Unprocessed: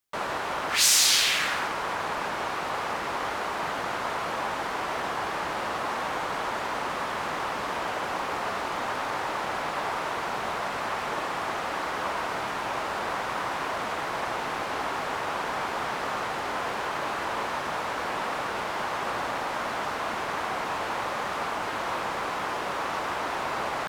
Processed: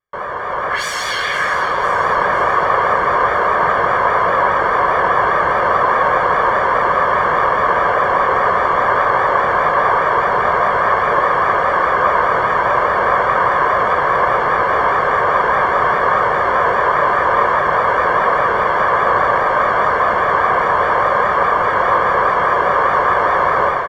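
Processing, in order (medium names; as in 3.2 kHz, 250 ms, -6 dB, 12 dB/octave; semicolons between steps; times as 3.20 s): bass shelf 440 Hz -4.5 dB; band-stop 650 Hz, Q 12; comb 1.8 ms, depth 62%; level rider gain up to 10 dB; Savitzky-Golay filter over 41 samples; vibrato 4.9 Hz 56 cents; thinning echo 505 ms, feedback 53%, level -11 dB; trim +6.5 dB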